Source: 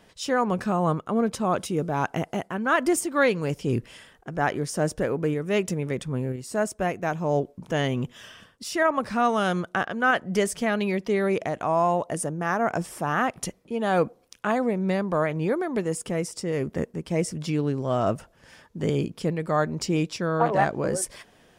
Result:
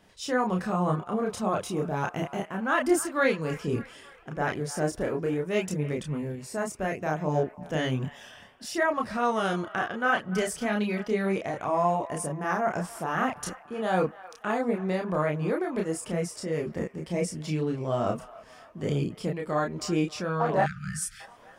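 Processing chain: band-limited delay 0.291 s, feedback 56%, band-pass 1400 Hz, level -16 dB; spectral delete 20.63–21.2, 210–1200 Hz; chorus voices 2, 0.34 Hz, delay 30 ms, depth 3.3 ms

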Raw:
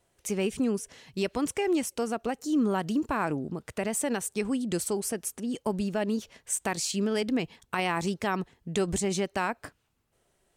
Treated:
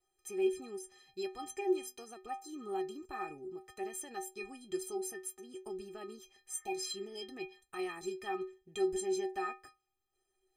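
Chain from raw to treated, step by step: 1.29–2.07 notches 50/100/150/200/250 Hz; 6.52–7.23 spectral repair 930–2300 Hz after; metallic resonator 370 Hz, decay 0.32 s, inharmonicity 0.03; gain +5.5 dB

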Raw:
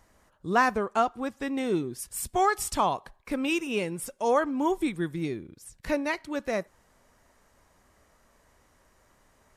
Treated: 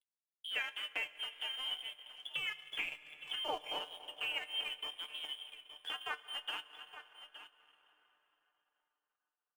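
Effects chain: Wiener smoothing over 41 samples; inverted band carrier 3400 Hz; tilt -3 dB/oct; in parallel at +0.5 dB: limiter -21 dBFS, peak gain reduction 8.5 dB; on the sum: compressor 4:1, threshold -36 dBFS, peak gain reduction 15.5 dB; three-band isolator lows -21 dB, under 300 Hz, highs -13 dB, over 2600 Hz; crossover distortion -57.5 dBFS; resonator 150 Hz, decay 0.17 s, harmonics all, mix 80%; on a send: echo 0.868 s -13 dB; on the sum: plate-style reverb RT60 4 s, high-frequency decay 0.7×, DRR 8 dB; transient shaper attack +1 dB, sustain -8 dB; gain +9.5 dB

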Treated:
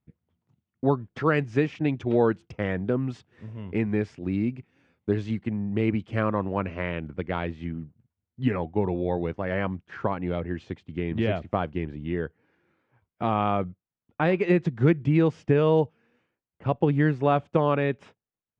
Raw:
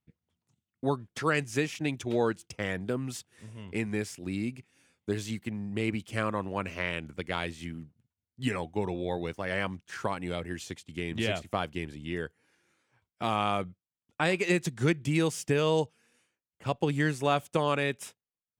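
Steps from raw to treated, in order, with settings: tape spacing loss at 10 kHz 37 dB, from 6.66 s at 10 kHz 44 dB; gain +7.5 dB

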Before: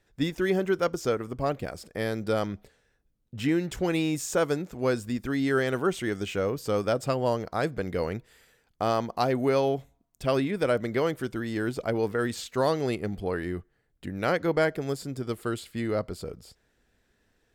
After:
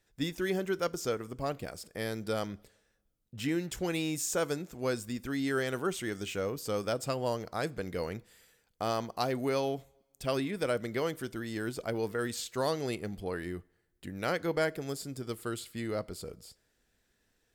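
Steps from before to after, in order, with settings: high shelf 3800 Hz +9 dB; on a send: reverb, pre-delay 3 ms, DRR 20 dB; on the sum: gain -6.5 dB

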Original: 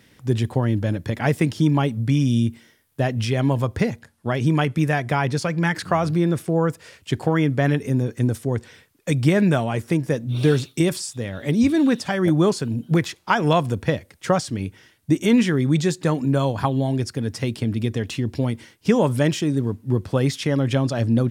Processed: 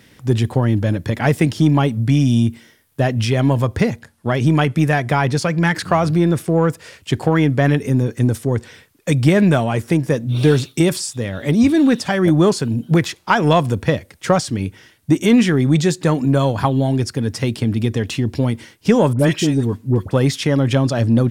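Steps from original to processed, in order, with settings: in parallel at -8 dB: soft clip -18 dBFS, distortion -11 dB; 19.13–20.11 on the sum: dispersion highs, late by 61 ms, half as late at 1300 Hz; gain +2.5 dB

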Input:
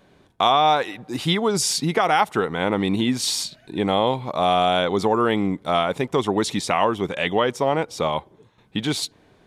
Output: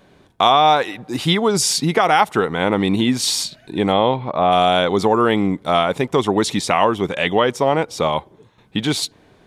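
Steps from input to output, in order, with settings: 3.92–4.51 LPF 4400 Hz -> 2100 Hz 12 dB/oct; gain +4 dB

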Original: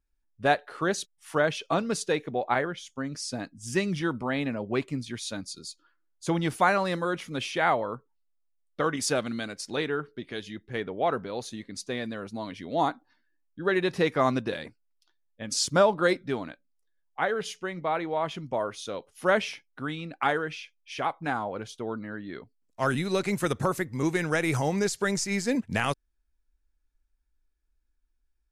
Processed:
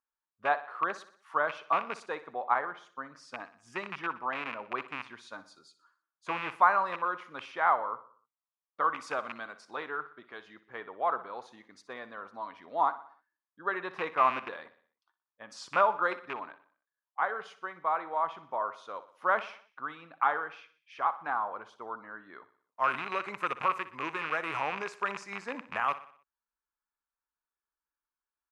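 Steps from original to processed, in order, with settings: rattling part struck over -31 dBFS, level -16 dBFS; band-pass 1100 Hz, Q 3.3; feedback echo 61 ms, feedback 49%, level -15 dB; gain +5 dB

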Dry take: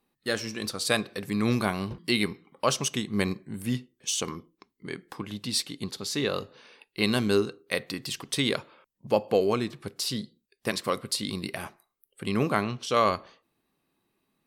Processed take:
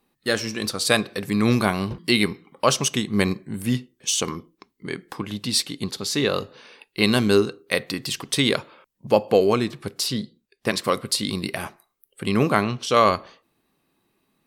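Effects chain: 10.06–10.76 high shelf 5300 Hz -> 8100 Hz -8 dB; gain +6 dB

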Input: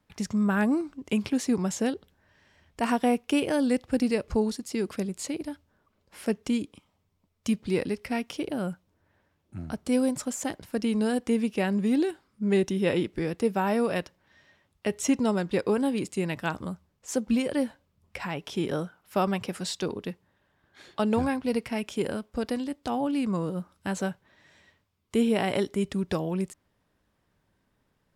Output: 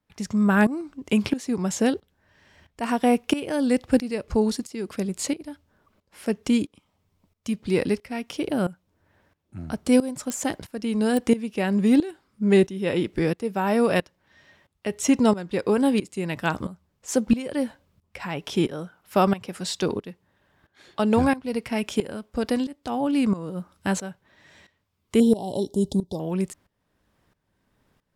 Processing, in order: 25.2–26.2 elliptic band-stop 890–3600 Hz, stop band 40 dB; tremolo saw up 1.5 Hz, depth 85%; pops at 10.3/11.17, -22 dBFS; gain +7.5 dB

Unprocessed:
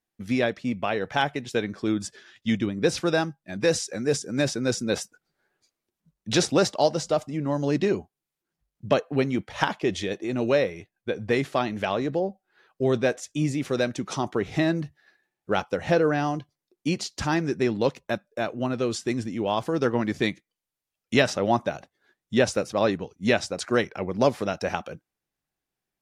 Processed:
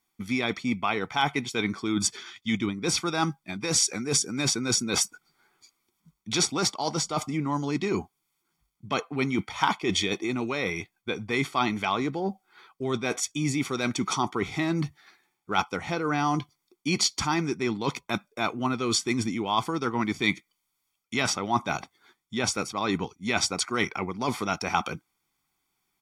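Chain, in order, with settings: reverse; compressor 10:1, threshold -29 dBFS, peak gain reduction 15 dB; reverse; low shelf 240 Hz -11.5 dB; comb 0.9 ms, depth 75%; gain +9 dB

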